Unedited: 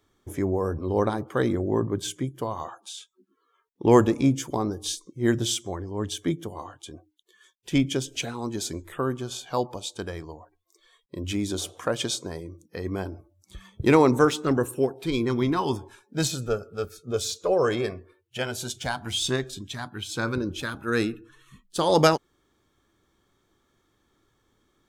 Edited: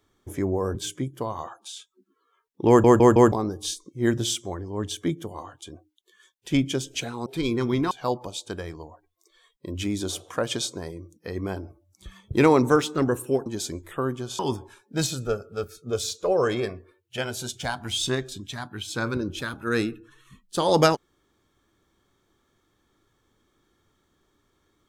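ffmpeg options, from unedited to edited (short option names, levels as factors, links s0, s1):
-filter_complex "[0:a]asplit=10[s0][s1][s2][s3][s4][s5][s6][s7][s8][s9];[s0]atrim=end=0.752[s10];[s1]atrim=start=1.958:end=4.052[s11];[s2]atrim=start=3.888:end=4.052[s12];[s3]atrim=start=3.888:end=4.052[s13];[s4]atrim=start=3.888:end=4.052[s14];[s5]atrim=start=4.528:end=8.472[s15];[s6]atrim=start=14.948:end=15.602[s16];[s7]atrim=start=9.398:end=14.952[s17];[s8]atrim=start=8.468:end=9.402[s18];[s9]atrim=start=15.598[s19];[s10][s11]acrossfade=d=0.004:c1=hsin:c2=hsin[s20];[s20][s12]acrossfade=d=0.004:c1=hsin:c2=hsin[s21];[s21][s13]acrossfade=d=0.004:c1=hsin:c2=hsin[s22];[s22][s14]acrossfade=d=0.004:c1=hsin:c2=hsin[s23];[s23][s15]acrossfade=d=0.004:c1=hsin:c2=hsin[s24];[s24][s16]acrossfade=d=0.004:c1=hsin:c2=hsin[s25];[s25][s17]acrossfade=d=0.004:c1=hsin:c2=hsin[s26];[s26][s18]acrossfade=d=0.004:c1=hsin:c2=hsin[s27];[s27][s19]acrossfade=d=0.004:c1=hsin:c2=hsin"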